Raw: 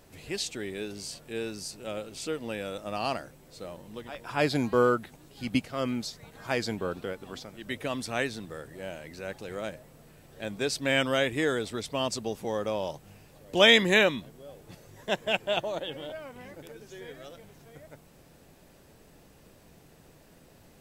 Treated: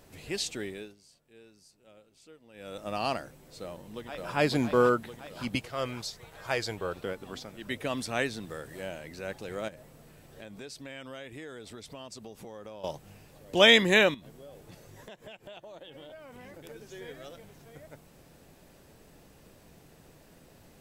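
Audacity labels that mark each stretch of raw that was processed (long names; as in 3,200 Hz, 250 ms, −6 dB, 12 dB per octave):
0.610000	2.880000	duck −21 dB, fades 0.35 s
3.610000	4.330000	delay throw 560 ms, feedback 60%, level −0.5 dB
5.550000	7.040000	parametric band 230 Hz −12 dB
7.970000	8.880000	one half of a high-frequency compander encoder only
9.680000	12.840000	downward compressor 4 to 1, threshold −43 dBFS
14.140000	16.640000	downward compressor 12 to 1, threshold −43 dBFS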